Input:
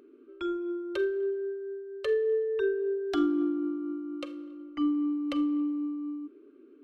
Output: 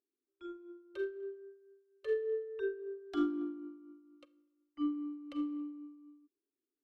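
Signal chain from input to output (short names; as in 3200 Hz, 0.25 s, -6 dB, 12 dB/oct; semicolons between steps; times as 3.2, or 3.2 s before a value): upward expander 2.5:1, over -47 dBFS; gain -3 dB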